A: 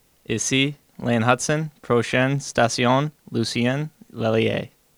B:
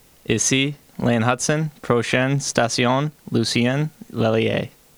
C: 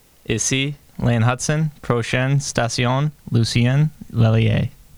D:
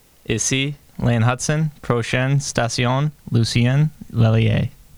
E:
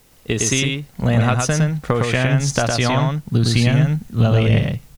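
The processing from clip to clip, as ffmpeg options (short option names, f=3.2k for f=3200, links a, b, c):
-af "acompressor=threshold=-23dB:ratio=6,volume=8dB"
-af "asubboost=boost=10.5:cutoff=130,volume=-1dB"
-af anull
-af "aecho=1:1:110:0.668"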